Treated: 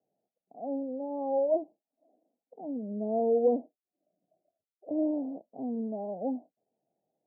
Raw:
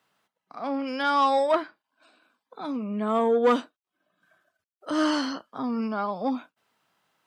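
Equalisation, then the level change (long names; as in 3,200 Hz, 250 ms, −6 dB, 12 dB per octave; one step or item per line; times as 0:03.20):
high-pass filter 250 Hz 6 dB per octave
Butterworth low-pass 750 Hz 72 dB per octave
−2.0 dB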